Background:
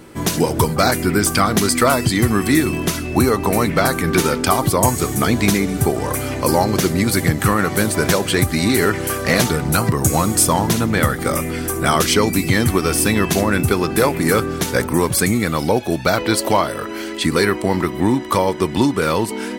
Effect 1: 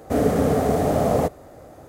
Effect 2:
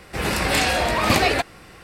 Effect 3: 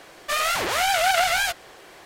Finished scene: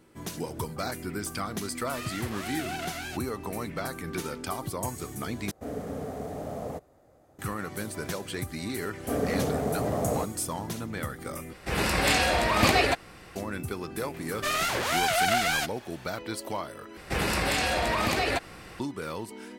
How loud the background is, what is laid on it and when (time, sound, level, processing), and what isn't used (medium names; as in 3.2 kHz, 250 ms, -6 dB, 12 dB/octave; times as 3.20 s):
background -17.5 dB
1.65 s: add 3 -16 dB
5.51 s: replace with 1 -16 dB
8.97 s: add 1 -9 dB
11.53 s: replace with 2 -3.5 dB
14.14 s: add 3 -4.5 dB
16.97 s: replace with 2 -0.5 dB + compression, threshold -22 dBFS